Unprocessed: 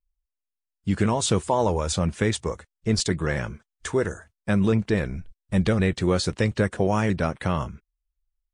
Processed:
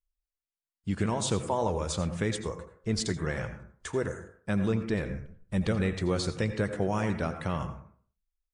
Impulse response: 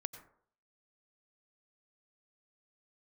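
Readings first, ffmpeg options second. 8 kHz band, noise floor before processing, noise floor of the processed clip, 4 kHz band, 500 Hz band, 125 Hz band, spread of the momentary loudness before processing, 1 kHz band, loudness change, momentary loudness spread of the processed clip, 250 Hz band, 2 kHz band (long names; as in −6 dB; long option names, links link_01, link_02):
−6.5 dB, below −85 dBFS, below −85 dBFS, −6.5 dB, −6.5 dB, −6.5 dB, 11 LU, −6.0 dB, −6.5 dB, 10 LU, −6.5 dB, −6.5 dB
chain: -filter_complex "[1:a]atrim=start_sample=2205,asetrate=48510,aresample=44100[link_01];[0:a][link_01]afir=irnorm=-1:irlink=0,volume=-3.5dB"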